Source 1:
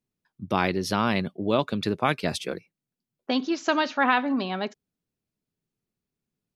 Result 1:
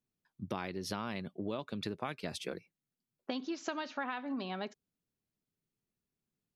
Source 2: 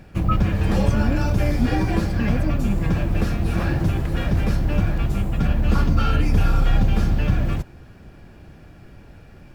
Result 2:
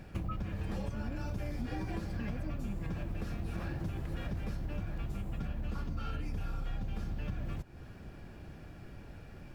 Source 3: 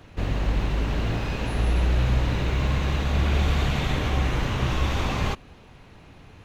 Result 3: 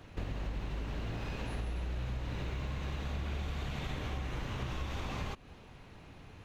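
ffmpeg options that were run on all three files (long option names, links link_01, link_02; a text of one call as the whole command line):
ffmpeg -i in.wav -af "acompressor=threshold=-30dB:ratio=6,volume=-4.5dB" out.wav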